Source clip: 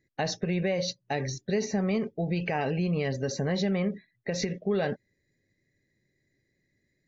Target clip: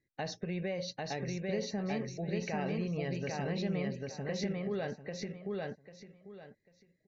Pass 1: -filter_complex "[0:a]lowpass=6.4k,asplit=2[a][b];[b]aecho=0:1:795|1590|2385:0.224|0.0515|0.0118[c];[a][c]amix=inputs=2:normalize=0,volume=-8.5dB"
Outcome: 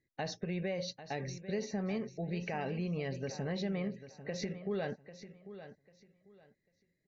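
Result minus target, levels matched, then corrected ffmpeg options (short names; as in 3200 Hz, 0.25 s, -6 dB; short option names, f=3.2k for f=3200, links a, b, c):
echo-to-direct -11 dB
-filter_complex "[0:a]lowpass=6.4k,asplit=2[a][b];[b]aecho=0:1:795|1590|2385:0.794|0.183|0.042[c];[a][c]amix=inputs=2:normalize=0,volume=-8.5dB"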